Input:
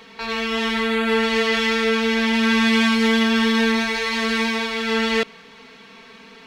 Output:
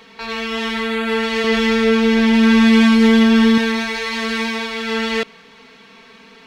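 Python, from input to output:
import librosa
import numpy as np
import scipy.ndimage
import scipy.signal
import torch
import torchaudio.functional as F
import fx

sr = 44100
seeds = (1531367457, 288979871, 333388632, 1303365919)

y = fx.low_shelf(x, sr, hz=490.0, db=9.5, at=(1.44, 3.58))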